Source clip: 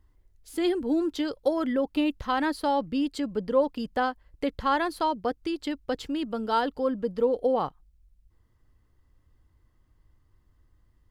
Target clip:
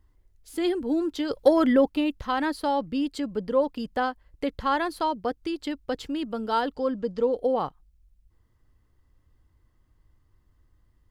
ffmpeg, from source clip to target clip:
ffmpeg -i in.wav -filter_complex "[0:a]asplit=3[link_01][link_02][link_03];[link_01]afade=type=out:start_time=1.29:duration=0.02[link_04];[link_02]acontrast=80,afade=type=in:start_time=1.29:duration=0.02,afade=type=out:start_time=1.88:duration=0.02[link_05];[link_03]afade=type=in:start_time=1.88:duration=0.02[link_06];[link_04][link_05][link_06]amix=inputs=3:normalize=0,asettb=1/sr,asplit=3[link_07][link_08][link_09];[link_07]atrim=end=6.764[link_10];[link_08]atrim=start=6.76:end=7.32,asetpts=PTS-STARTPTS,afade=type=in:duration=0.004:curve=qsin,afade=type=out:start_time=0.556:duration=0.004:curve=qsin,lowpass=frequency=6500:width_type=q:width=1.6[link_11];[link_09]atrim=start=7.316[link_12];[link_10][link_11]acrossfade=duration=0.004:curve1=hsin:curve2=qsin[link_13];[link_13][link_12]acrossfade=duration=0.004:curve1=qsin:curve2=hsin" out.wav

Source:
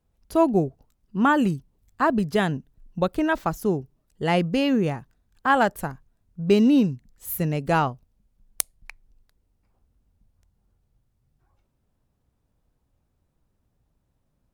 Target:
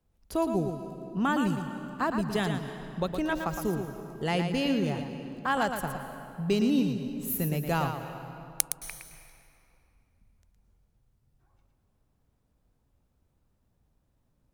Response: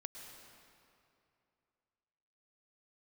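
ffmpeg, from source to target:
-filter_complex "[0:a]acrossover=split=120|3000[link_01][link_02][link_03];[link_02]acompressor=threshold=-36dB:ratio=1.5[link_04];[link_01][link_04][link_03]amix=inputs=3:normalize=0,asplit=2[link_05][link_06];[1:a]atrim=start_sample=2205,adelay=114[link_07];[link_06][link_07]afir=irnorm=-1:irlink=0,volume=-1.5dB[link_08];[link_05][link_08]amix=inputs=2:normalize=0,volume=-1.5dB"

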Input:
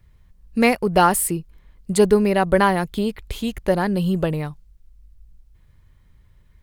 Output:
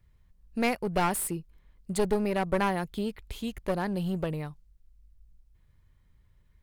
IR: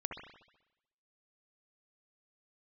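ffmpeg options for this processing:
-af "aeval=exprs='clip(val(0),-1,0.1)':channel_layout=same,volume=-9dB"

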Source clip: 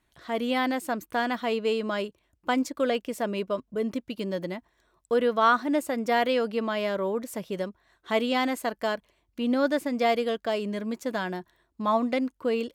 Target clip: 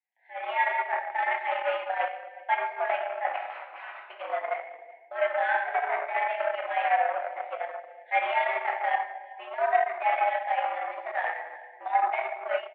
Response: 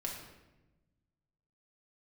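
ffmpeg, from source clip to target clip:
-filter_complex "[0:a]asuperstop=centerf=1100:order=8:qfactor=1.5,asettb=1/sr,asplit=3[link_01][link_02][link_03];[link_01]atrim=end=3.364[link_04];[link_02]atrim=start=3.36:end=4,asetpts=PTS-STARTPTS,afade=type=in:duration=0.004:curve=qsin,afade=type=out:start_time=0.636:duration=0.004:curve=qsin,aeval=exprs='(mod(47.3*val(0)+1,2)-1)/47.3':channel_layout=same[link_05];[link_03]atrim=start=3.996[link_06];[link_04][link_05]acrossfade=duration=0.004:curve1=hsin:curve2=qsin[link_07];[link_07][link_06]acrossfade=duration=0.004:curve1=qsin:curve2=hsin,asettb=1/sr,asplit=3[link_08][link_09][link_10];[link_08]atrim=end=5.864[link_11];[link_09]atrim=start=5.86:end=6.4,asetpts=PTS-STARTPTS,afade=type=in:duration=0.004:curve=qsin,afade=type=out:start_time=0.536:duration=0.004:curve=qsin,acompressor=threshold=-26dB:ratio=6[link_12];[link_10]atrim=start=6.396[link_13];[link_11][link_12]acrossfade=duration=0.004:curve1=hsin:curve2=qsin[link_14];[link_14][link_13]acrossfade=duration=0.004:curve1=qsin:curve2=hsin,flanger=delay=7.8:depth=9.9:regen=40:speed=0.43:shape=triangular,asoftclip=type=tanh:threshold=-18.5dB[link_15];[1:a]atrim=start_sample=2205,asetrate=37485,aresample=44100[link_16];[link_15][link_16]afir=irnorm=-1:irlink=0,dynaudnorm=framelen=210:gausssize=3:maxgain=15.5dB,asplit=2[link_17][link_18];[link_18]adelay=373.2,volume=-14dB,highshelf=frequency=4000:gain=-8.4[link_19];[link_17][link_19]amix=inputs=2:normalize=0,aeval=exprs='0.841*(cos(1*acos(clip(val(0)/0.841,-1,1)))-cos(1*PI/2))+0.0473*(cos(5*acos(clip(val(0)/0.841,-1,1)))-cos(5*PI/2))+0.0944*(cos(7*acos(clip(val(0)/0.841,-1,1)))-cos(7*PI/2))':channel_layout=same,highpass=frequency=580:width_type=q:width=0.5412,highpass=frequency=580:width_type=q:width=1.307,lowpass=frequency=2300:width_type=q:width=0.5176,lowpass=frequency=2300:width_type=q:width=0.7071,lowpass=frequency=2300:width_type=q:width=1.932,afreqshift=130,volume=-5.5dB"

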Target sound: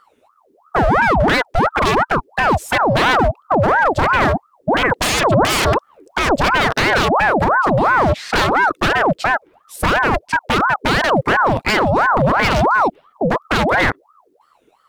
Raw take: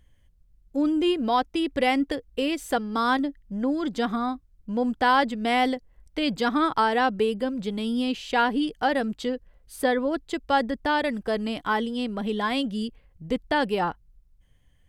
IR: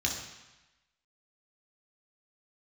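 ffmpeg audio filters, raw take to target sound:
-filter_complex "[0:a]highpass=44,afwtdn=0.0398,asettb=1/sr,asplit=3[link_01][link_02][link_03];[link_01]atrim=end=3.014[link_04];[link_02]atrim=start=3.01:end=3.55,asetpts=PTS-STARTPTS,afade=type=in:duration=0.004:curve=qsin,afade=type=out:start_time=0.536:duration=0.004:curve=qsin,equalizer=frequency=230:width_type=o:width=0.36:gain=12[link_05];[link_03]atrim=start=3.546[link_06];[link_04][link_05]acrossfade=duration=0.004:curve1=hsin:curve2=qsin[link_07];[link_07][link_06]acrossfade=duration=0.004:curve1=qsin:curve2=hsin,acompressor=threshold=-23dB:ratio=10,asettb=1/sr,asplit=3[link_08][link_09][link_10];[link_08]atrim=end=4.744[link_11];[link_09]atrim=start=4.74:end=6.36,asetpts=PTS-STARTPTS,afade=type=in:duration=0.004:curve=qsin,afade=type=out:start_time=1.616:duration=0.004:curve=qsin,aeval=exprs='0.178*(cos(1*acos(clip(val(0)/0.178,-1,1)))-cos(1*PI/2))+0.0355*(cos(3*acos(clip(val(0)/0.178,-1,1)))-cos(3*PI/2))+0.0112*(cos(5*acos(clip(val(0)/0.178,-1,1)))-cos(5*PI/2))+0.0562*(cos(7*acos(clip(val(0)/0.178,-1,1)))-cos(7*PI/2))':channel_layout=same[link_12];[link_10]atrim=start=6.356[link_13];[link_11][link_12]acrossfade=duration=0.004:curve1=hsin:curve2=qsin[link_14];[link_14][link_13]acrossfade=duration=0.004:curve1=qsin:curve2=hsin,aeval=exprs='0.0562*(abs(mod(val(0)/0.0562+3,4)-2)-1)':channel_layout=same,alimiter=level_in=33dB:limit=-1dB:release=50:level=0:latency=1,aeval=exprs='val(0)*sin(2*PI*810*n/s+810*0.6/2.9*sin(2*PI*2.9*n/s))':channel_layout=same,volume=-6dB"

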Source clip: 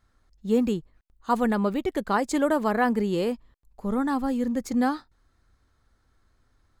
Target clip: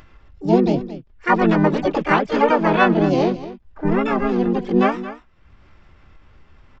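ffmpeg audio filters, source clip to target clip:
ffmpeg -i in.wav -filter_complex "[0:a]asplit=2[link_01][link_02];[link_02]aecho=0:1:223:0.2[link_03];[link_01][link_03]amix=inputs=2:normalize=0,aresample=8000,aresample=44100,aecho=1:1:5.1:0.3,asplit=4[link_04][link_05][link_06][link_07];[link_05]asetrate=35002,aresample=44100,atempo=1.25992,volume=-1dB[link_08];[link_06]asetrate=66075,aresample=44100,atempo=0.66742,volume=0dB[link_09];[link_07]asetrate=88200,aresample=44100,atempo=0.5,volume=-8dB[link_10];[link_04][link_08][link_09][link_10]amix=inputs=4:normalize=0,acompressor=mode=upward:threshold=-39dB:ratio=2.5,volume=2dB" out.wav

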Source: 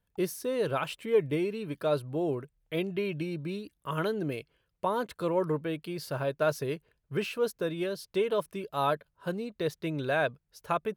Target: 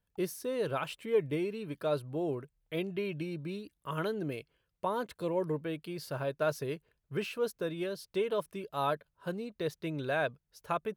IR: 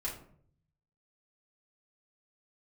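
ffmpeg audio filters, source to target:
-filter_complex "[0:a]asettb=1/sr,asplit=3[link_01][link_02][link_03];[link_01]atrim=end=5.174[link_04];[link_02]atrim=start=5.17:end=5.59,asetpts=PTS-STARTPTS,afade=type=in:duration=0.004:curve=qsin,afade=type=out:start_time=0.416:duration=0.004:curve=qsin,equalizer=frequency=1300:width=3.6:gain=-12[link_05];[link_03]atrim=start=5.586[link_06];[link_04][link_05]acrossfade=duration=0.004:curve1=hsin:curve2=qsin[link_07];[link_07][link_06]acrossfade=duration=0.004:curve1=qsin:curve2=hsin,volume=-3.5dB"

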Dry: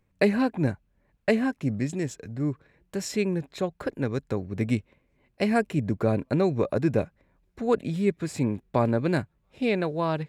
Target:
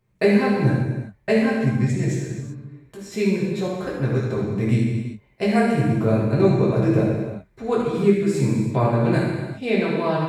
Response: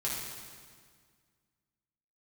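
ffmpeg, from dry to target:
-filter_complex "[0:a]asettb=1/sr,asplit=3[link_01][link_02][link_03];[link_01]atrim=end=2.324[link_04];[link_02]atrim=start=2.32:end=3.12,asetpts=PTS-STARTPTS,afade=type=in:duration=0.004:curve=qsin,afade=type=out:start_time=0.796:duration=0.004:curve=qsin,acompressor=threshold=-41dB:ratio=6[link_05];[link_03]atrim=start=3.116[link_06];[link_04][link_05]acrossfade=duration=0.004:curve1=hsin:curve2=qsin[link_07];[link_07][link_06]acrossfade=duration=0.004:curve1=qsin:curve2=hsin[link_08];[1:a]atrim=start_sample=2205,afade=type=out:start_time=0.45:duration=0.01,atrim=end_sample=20286[link_09];[link_08][link_09]afir=irnorm=-1:irlink=0"

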